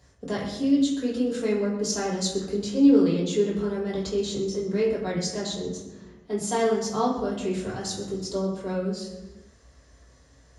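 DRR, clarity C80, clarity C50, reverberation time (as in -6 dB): -6.5 dB, 6.5 dB, 4.0 dB, 1.1 s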